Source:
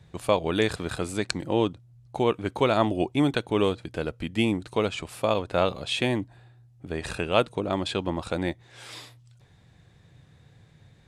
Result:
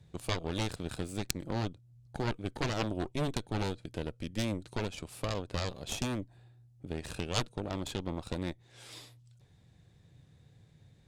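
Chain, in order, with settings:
harmonic generator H 3 −15 dB, 6 −14 dB, 7 −18 dB, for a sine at −4 dBFS
in parallel at +3 dB: downward compressor, threshold −38 dBFS, peak gain reduction 17.5 dB
on the sum: parametric band 1,400 Hz −6.5 dB 2.3 octaves
level −4.5 dB

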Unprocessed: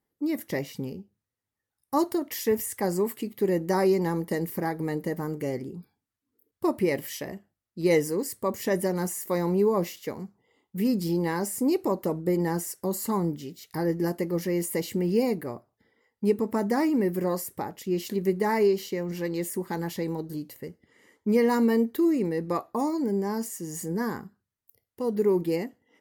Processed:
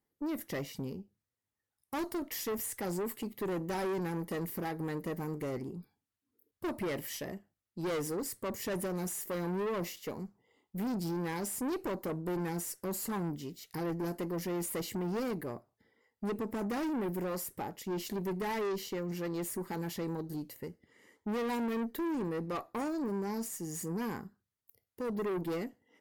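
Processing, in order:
tube saturation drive 29 dB, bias 0.3
level −2.5 dB

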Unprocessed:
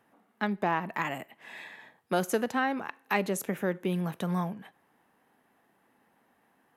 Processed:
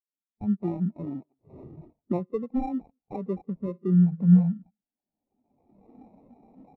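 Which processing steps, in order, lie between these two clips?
camcorder AGC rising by 19 dB per second
0:00.64–0:01.21: low shelf with overshoot 510 Hz +6.5 dB, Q 1.5
0:02.17–0:02.83: Butterworth low-pass 2,400 Hz 36 dB per octave
0:03.57–0:04.29: hum removal 55.31 Hz, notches 10
in parallel at +0.5 dB: brickwall limiter −26.5 dBFS, peak gain reduction 17 dB
on the sum: single-tap delay 188 ms −19.5 dB
decimation without filtering 28×
every bin expanded away from the loudest bin 2.5 to 1
level +2 dB

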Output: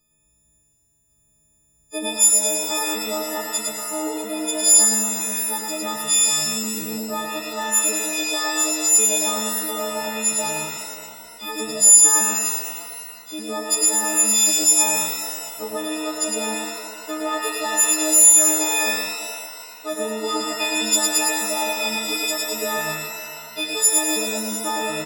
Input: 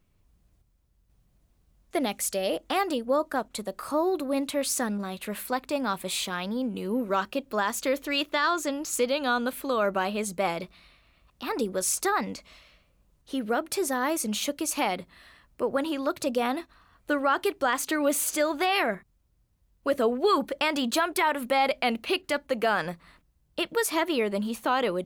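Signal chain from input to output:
every partial snapped to a pitch grid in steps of 6 semitones
graphic EQ with 15 bands 100 Hz −4 dB, 1,600 Hz −7 dB, 6,300 Hz +9 dB
on a send: single-tap delay 109 ms −4 dB
on the sum: reverb with rising layers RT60 2 s, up +7 semitones, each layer −2 dB, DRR 4 dB
level −4.5 dB

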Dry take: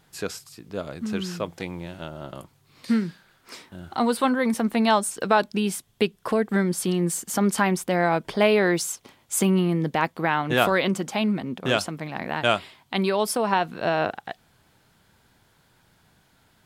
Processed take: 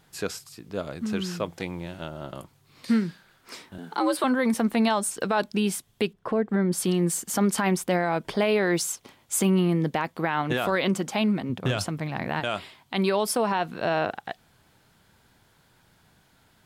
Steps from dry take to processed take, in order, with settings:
0:03.78–0:04.24: frequency shifter +83 Hz
0:11.49–0:12.40: parametric band 110 Hz +12.5 dB 0.69 octaves
brickwall limiter −14 dBFS, peak gain reduction 10 dB
0:06.13–0:06.72: low-pass filter 1,100 Hz 6 dB per octave

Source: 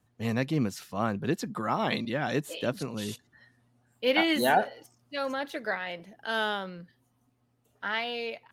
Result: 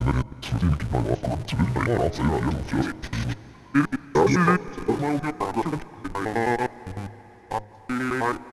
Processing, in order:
slices reordered back to front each 104 ms, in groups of 4
Butterworth low-pass 12,000 Hz 72 dB per octave
pitch vibrato 0.32 Hz 32 cents
in parallel at −9 dB: comparator with hysteresis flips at −40.5 dBFS
on the sum: pitch shifter −10.5 semitones
hum removal 104.7 Hz, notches 9
on a send at −18 dB: convolution reverb RT60 4.5 s, pre-delay 161 ms
on the sum: level +5.5 dB

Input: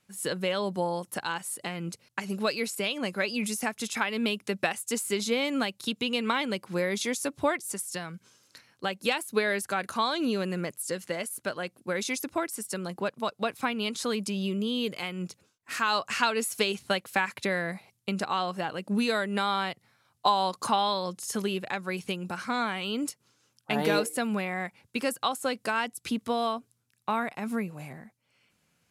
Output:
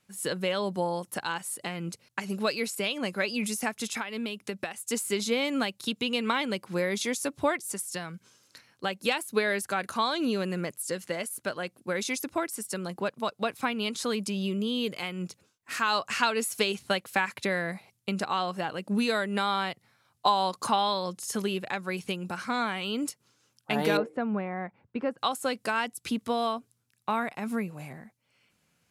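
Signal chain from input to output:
0:03.94–0:04.87: downward compressor 12 to 1, threshold −30 dBFS, peak gain reduction 9.5 dB
0:23.97–0:25.18: low-pass filter 1,300 Hz 12 dB per octave

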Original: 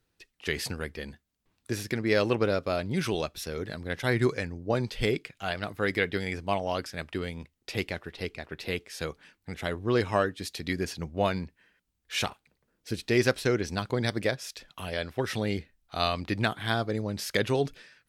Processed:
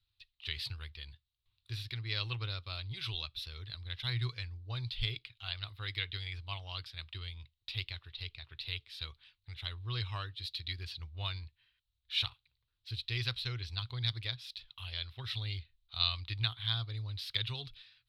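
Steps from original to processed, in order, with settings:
drawn EQ curve 120 Hz 0 dB, 180 Hz −29 dB, 320 Hz −23 dB, 590 Hz −25 dB, 1,100 Hz −9 dB, 1,700 Hz −13 dB, 3,900 Hz +8 dB, 6,400 Hz −20 dB, 13,000 Hz −13 dB
level −3 dB

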